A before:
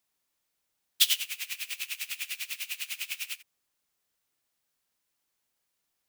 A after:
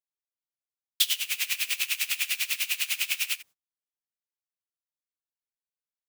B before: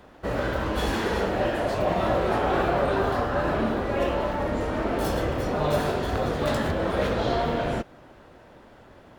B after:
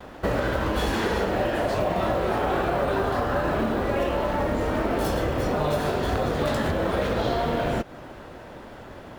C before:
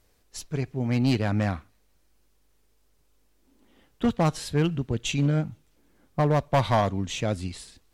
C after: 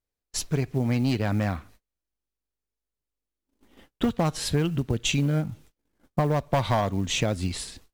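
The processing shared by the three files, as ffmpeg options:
-af "acrusher=bits=8:mode=log:mix=0:aa=0.000001,acompressor=threshold=-30dB:ratio=6,agate=range=-32dB:threshold=-58dB:ratio=16:detection=peak,volume=8.5dB"

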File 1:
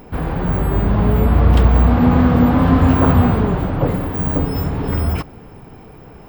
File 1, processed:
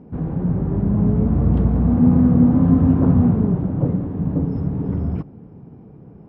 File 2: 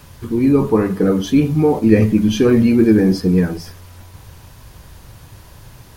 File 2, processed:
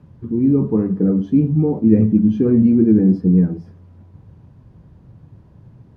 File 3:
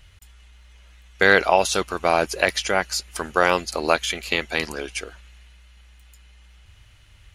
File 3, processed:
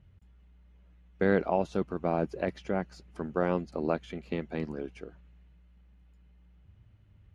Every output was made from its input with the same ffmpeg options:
-af "bandpass=f=180:t=q:w=1.2:csg=0,volume=2dB"

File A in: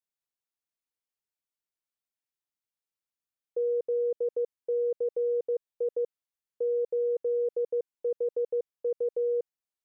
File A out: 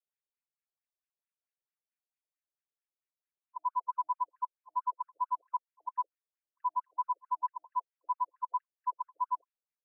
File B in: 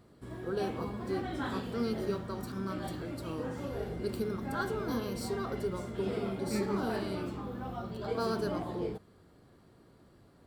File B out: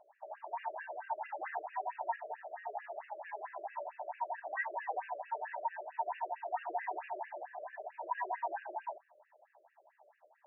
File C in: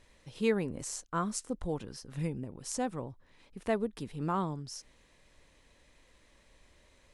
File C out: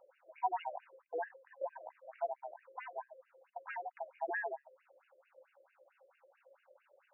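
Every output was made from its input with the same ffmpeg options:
-af "afftfilt=real='real(if(lt(b,1008),b+24*(1-2*mod(floor(b/24),2)),b),0)':imag='imag(if(lt(b,1008),b+24*(1-2*mod(floor(b/24),2)),b),0)':win_size=2048:overlap=0.75,afftfilt=real='re*between(b*sr/4096,220,2900)':imag='im*between(b*sr/4096,220,2900)':win_size=4096:overlap=0.75,afftfilt=real='re*between(b*sr/1024,430*pow(2200/430,0.5+0.5*sin(2*PI*4.5*pts/sr))/1.41,430*pow(2200/430,0.5+0.5*sin(2*PI*4.5*pts/sr))*1.41)':imag='im*between(b*sr/1024,430*pow(2200/430,0.5+0.5*sin(2*PI*4.5*pts/sr))/1.41,430*pow(2200/430,0.5+0.5*sin(2*PI*4.5*pts/sr))*1.41)':win_size=1024:overlap=0.75"

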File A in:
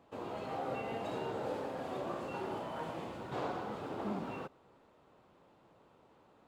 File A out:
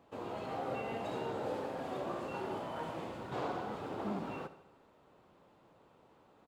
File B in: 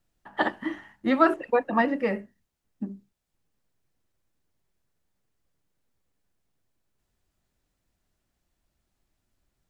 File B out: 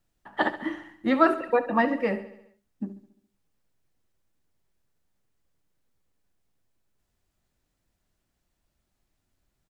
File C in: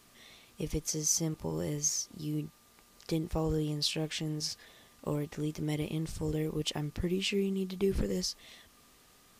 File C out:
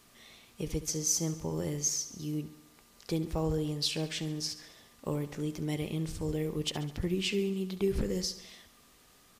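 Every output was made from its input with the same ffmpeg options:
-af "aecho=1:1:69|138|207|276|345|414:0.188|0.109|0.0634|0.0368|0.0213|0.0124"

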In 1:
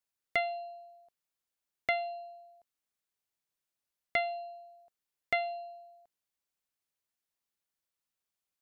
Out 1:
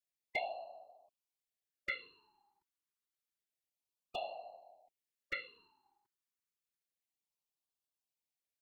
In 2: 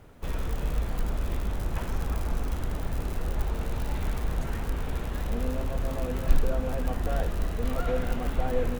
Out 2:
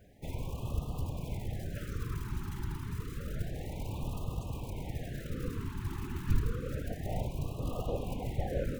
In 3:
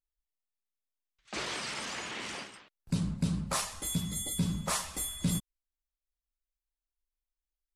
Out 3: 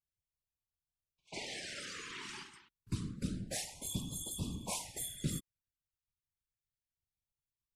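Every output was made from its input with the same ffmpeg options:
-af "afftfilt=real='hypot(re,im)*cos(2*PI*random(0))':imag='hypot(re,im)*sin(2*PI*random(1))':win_size=512:overlap=0.75,lowshelf=f=200:g=-2,afftfilt=real='re*(1-between(b*sr/1024,560*pow(1800/560,0.5+0.5*sin(2*PI*0.29*pts/sr))/1.41,560*pow(1800/560,0.5+0.5*sin(2*PI*0.29*pts/sr))*1.41))':imag='im*(1-between(b*sr/1024,560*pow(1800/560,0.5+0.5*sin(2*PI*0.29*pts/sr))/1.41,560*pow(1800/560,0.5+0.5*sin(2*PI*0.29*pts/sr))*1.41))':win_size=1024:overlap=0.75"

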